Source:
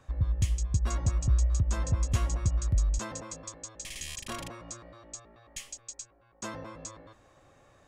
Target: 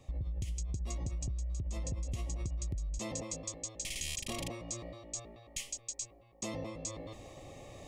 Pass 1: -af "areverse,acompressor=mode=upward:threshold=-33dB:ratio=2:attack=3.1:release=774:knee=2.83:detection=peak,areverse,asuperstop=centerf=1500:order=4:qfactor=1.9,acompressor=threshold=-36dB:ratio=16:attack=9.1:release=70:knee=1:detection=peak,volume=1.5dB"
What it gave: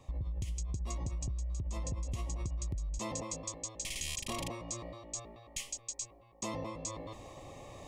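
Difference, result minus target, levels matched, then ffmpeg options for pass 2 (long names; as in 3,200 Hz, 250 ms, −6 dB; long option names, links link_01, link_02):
1,000 Hz band +5.0 dB
-af "areverse,acompressor=mode=upward:threshold=-33dB:ratio=2:attack=3.1:release=774:knee=2.83:detection=peak,areverse,asuperstop=centerf=1500:order=4:qfactor=1.9,acompressor=threshold=-36dB:ratio=16:attack=9.1:release=70:knee=1:detection=peak,equalizer=frequency=1000:width=3.9:gain=-10,volume=1.5dB"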